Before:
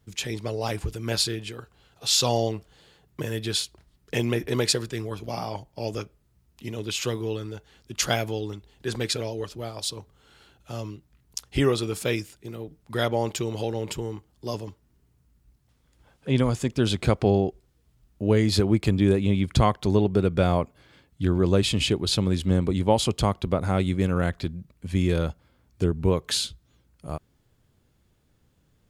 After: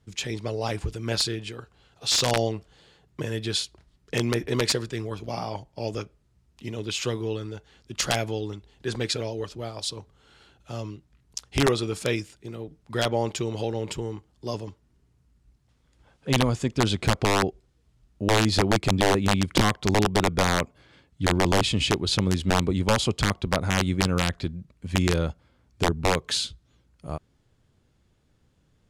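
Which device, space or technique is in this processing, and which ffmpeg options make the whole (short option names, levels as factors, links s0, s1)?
overflowing digital effects unit: -af "aeval=exprs='(mod(3.98*val(0)+1,2)-1)/3.98':c=same,lowpass=8600"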